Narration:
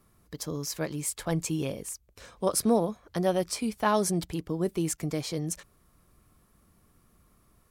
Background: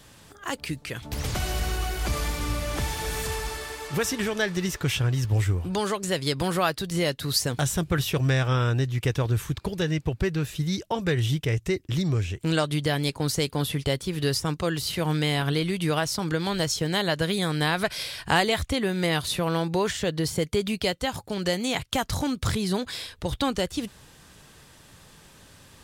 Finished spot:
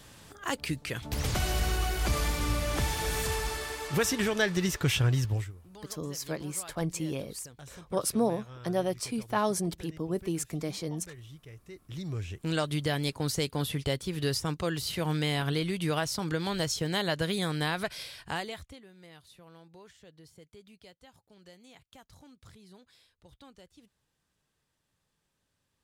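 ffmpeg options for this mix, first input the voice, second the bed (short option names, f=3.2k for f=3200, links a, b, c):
-filter_complex "[0:a]adelay=5500,volume=-3dB[a];[1:a]volume=18dB,afade=t=out:st=5.15:d=0.37:silence=0.0749894,afade=t=in:st=11.68:d=1.03:silence=0.112202,afade=t=out:st=17.45:d=1.38:silence=0.0668344[b];[a][b]amix=inputs=2:normalize=0"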